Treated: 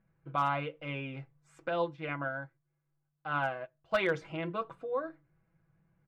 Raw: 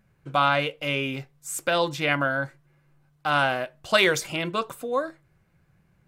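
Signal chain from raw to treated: LPF 1900 Hz 12 dB/oct; notches 60/120/180/240/300 Hz; comb 6.1 ms, depth 50%; hard clip -11 dBFS, distortion -27 dB; 1.68–3.94 upward expander 1.5:1, over -43 dBFS; gain -9 dB

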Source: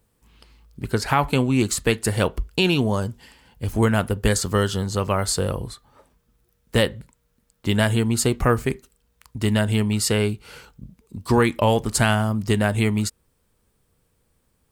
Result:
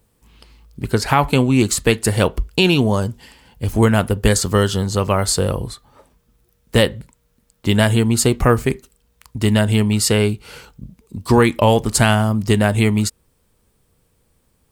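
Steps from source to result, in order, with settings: bell 1500 Hz -2 dB; gain +5 dB

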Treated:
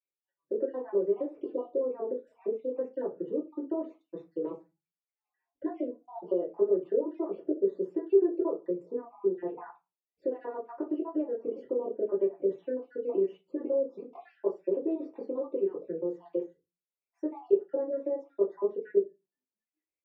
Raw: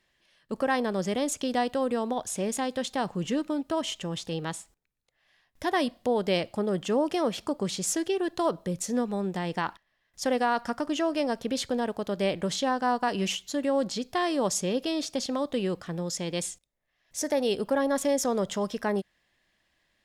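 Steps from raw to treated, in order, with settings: random spectral dropouts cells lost 51%; spectral noise reduction 25 dB; compressor, threshold -32 dBFS, peak gain reduction 10.5 dB; dynamic EQ 390 Hz, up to +5 dB, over -46 dBFS, Q 0.99; ladder band-pass 440 Hz, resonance 65%; reverb RT60 0.25 s, pre-delay 3 ms, DRR -8 dB; gain -1.5 dB

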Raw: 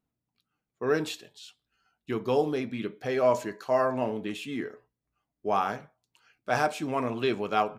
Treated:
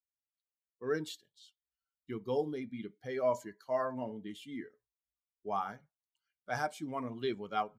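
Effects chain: per-bin expansion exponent 1.5; Butterworth band-stop 2600 Hz, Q 6.4; gain -6 dB

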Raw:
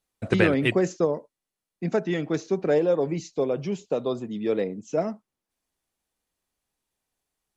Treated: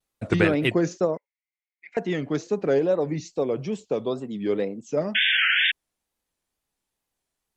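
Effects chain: 5.14–5.72 painted sound noise 1400–3400 Hz -21 dBFS; wow and flutter 140 cents; 1.17–1.97 ladder band-pass 2200 Hz, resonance 85%

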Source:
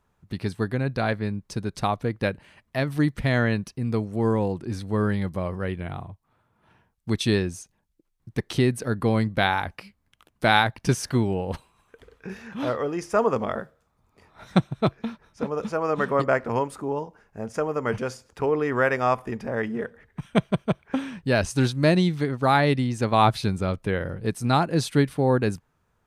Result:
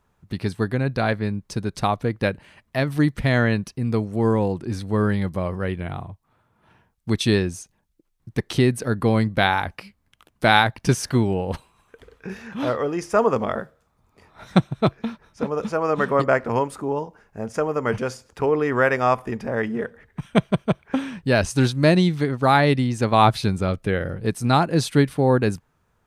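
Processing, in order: 23.68–24.14 notch 970 Hz, Q 5.2; gain +3 dB

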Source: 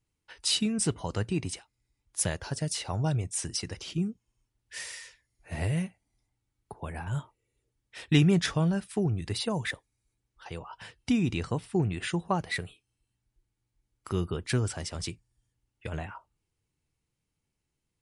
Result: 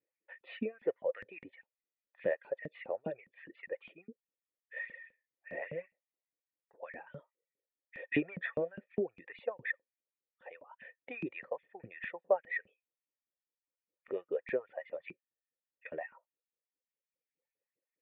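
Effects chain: reverb removal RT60 1.3 s; vocal tract filter e; LFO high-pass saw up 4.9 Hz 200–2800 Hz; gain +7 dB

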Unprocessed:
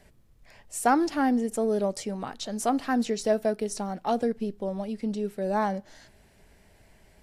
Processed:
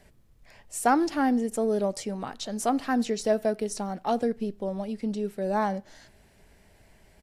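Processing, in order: speakerphone echo 90 ms, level -28 dB

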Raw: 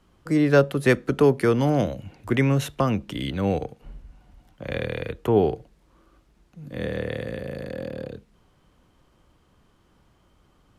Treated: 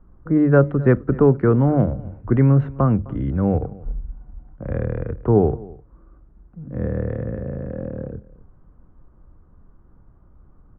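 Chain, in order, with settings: synth low-pass 1400 Hz, resonance Q 2.1; tilt -4 dB/oct; notches 50/100/150 Hz; on a send: echo 0.258 s -21.5 dB; on the sum: mismatched tape noise reduction decoder only; gain -3.5 dB

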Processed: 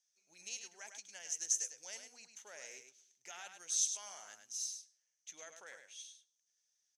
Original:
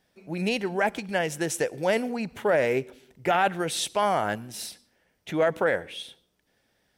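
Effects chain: band-pass 6300 Hz, Q 13; echo 0.103 s -7.5 dB; gain +8.5 dB

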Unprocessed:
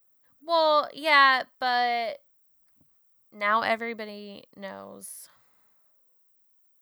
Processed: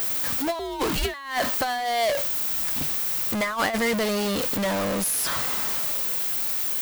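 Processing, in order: zero-crossing step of -22 dBFS; negative-ratio compressor -23 dBFS, ratio -0.5; 0.59–1.14 frequency shift -250 Hz

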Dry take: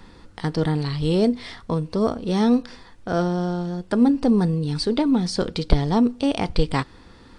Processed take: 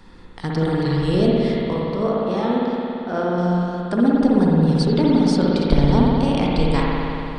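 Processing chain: 1.73–3.38 tone controls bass -8 dB, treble -10 dB; spring tank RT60 3 s, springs 56 ms, chirp 35 ms, DRR -4.5 dB; gain -2 dB

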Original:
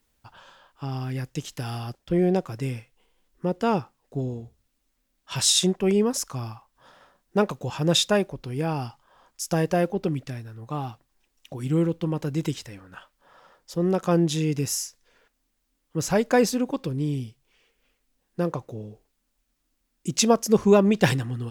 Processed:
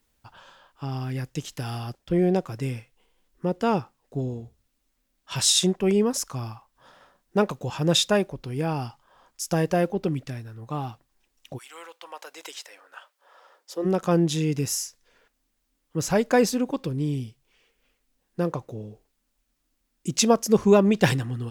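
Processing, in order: 11.57–13.84 HPF 920 Hz -> 320 Hz 24 dB/oct

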